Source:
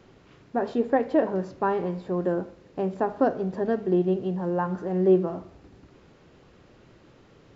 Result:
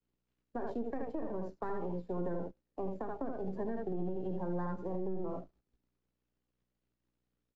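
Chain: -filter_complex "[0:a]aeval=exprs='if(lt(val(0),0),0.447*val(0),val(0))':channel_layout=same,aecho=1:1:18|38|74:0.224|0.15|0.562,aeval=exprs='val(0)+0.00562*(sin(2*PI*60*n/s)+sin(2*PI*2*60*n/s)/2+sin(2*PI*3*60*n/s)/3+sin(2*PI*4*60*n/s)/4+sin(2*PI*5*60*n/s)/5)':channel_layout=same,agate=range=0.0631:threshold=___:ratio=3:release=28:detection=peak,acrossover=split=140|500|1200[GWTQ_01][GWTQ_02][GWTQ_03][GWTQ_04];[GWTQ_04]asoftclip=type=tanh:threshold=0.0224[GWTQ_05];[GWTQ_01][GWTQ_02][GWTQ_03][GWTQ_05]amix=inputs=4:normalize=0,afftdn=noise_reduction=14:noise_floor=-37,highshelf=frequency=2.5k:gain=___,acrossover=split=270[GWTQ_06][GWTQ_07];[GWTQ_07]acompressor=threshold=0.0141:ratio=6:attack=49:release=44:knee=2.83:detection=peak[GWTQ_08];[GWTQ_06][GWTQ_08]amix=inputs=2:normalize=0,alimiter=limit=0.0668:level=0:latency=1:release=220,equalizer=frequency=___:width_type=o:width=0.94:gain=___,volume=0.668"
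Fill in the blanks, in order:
0.0141, 7, 78, -14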